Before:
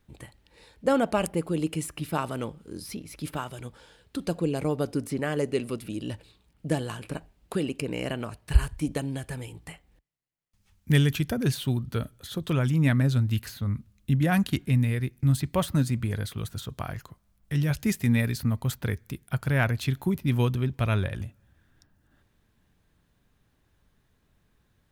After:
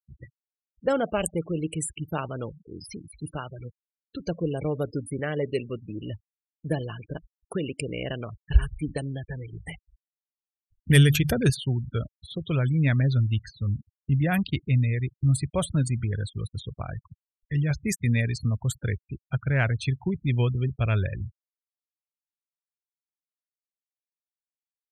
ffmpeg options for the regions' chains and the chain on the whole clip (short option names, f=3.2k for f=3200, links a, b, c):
-filter_complex "[0:a]asettb=1/sr,asplit=3[a][b][c];[a]atrim=end=9.534[d];[b]atrim=start=9.53:end=11.5,asetpts=PTS-STARTPTS,afade=t=in:d=0.004:c=qsin,afade=t=out:st=1.966:d=0.004:c=qsin,bandreject=f=50:t=h:w=6,bandreject=f=100:t=h:w=6,bandreject=f=150:t=h:w=6,acontrast=44[e];[c]atrim=start=11.496[f];[d][e]acrossfade=d=0.004:c1=hsin:c2=qsin[g];[g][f]acrossfade=d=0.004:c1=qsin:c2=hsin,afftfilt=real='re*gte(hypot(re,im),0.0224)':imag='im*gte(hypot(re,im),0.0224)':win_size=1024:overlap=0.75,equalizer=f=250:t=o:w=1:g=-7,equalizer=f=1k:t=o:w=1:g=-7,equalizer=f=4k:t=o:w=1:g=-3,equalizer=f=8k:t=o:w=1:g=6,acontrast=33,volume=-2.5dB"